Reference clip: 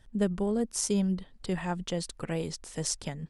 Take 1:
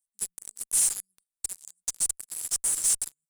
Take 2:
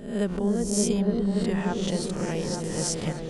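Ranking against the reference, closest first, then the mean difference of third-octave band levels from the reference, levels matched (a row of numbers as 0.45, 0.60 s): 2, 1; 7.5, 15.0 dB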